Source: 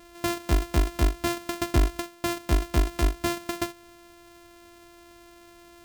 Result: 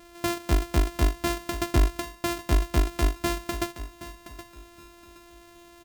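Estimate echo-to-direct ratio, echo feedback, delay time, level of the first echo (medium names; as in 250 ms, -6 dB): -13.5 dB, 29%, 771 ms, -14.0 dB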